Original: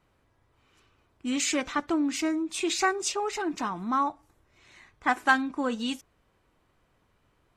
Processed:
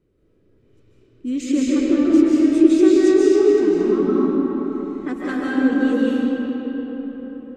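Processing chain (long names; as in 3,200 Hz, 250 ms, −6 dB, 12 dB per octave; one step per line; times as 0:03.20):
low shelf with overshoot 580 Hz +12 dB, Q 3
comb and all-pass reverb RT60 4.6 s, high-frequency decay 0.55×, pre-delay 110 ms, DRR −8 dB
level −9.5 dB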